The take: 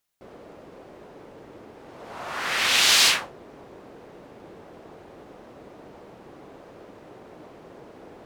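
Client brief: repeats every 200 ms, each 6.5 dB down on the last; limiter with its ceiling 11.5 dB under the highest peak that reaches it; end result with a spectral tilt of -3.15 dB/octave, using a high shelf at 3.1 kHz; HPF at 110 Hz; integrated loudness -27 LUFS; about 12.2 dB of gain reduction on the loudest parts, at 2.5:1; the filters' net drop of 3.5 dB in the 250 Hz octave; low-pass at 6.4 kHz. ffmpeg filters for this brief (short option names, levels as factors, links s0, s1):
-af "highpass=110,lowpass=6400,equalizer=f=250:t=o:g=-4.5,highshelf=f=3100:g=-3.5,acompressor=threshold=0.0158:ratio=2.5,alimiter=level_in=2.37:limit=0.0631:level=0:latency=1,volume=0.422,aecho=1:1:200|400|600|800|1000|1200:0.473|0.222|0.105|0.0491|0.0231|0.0109,volume=6.68"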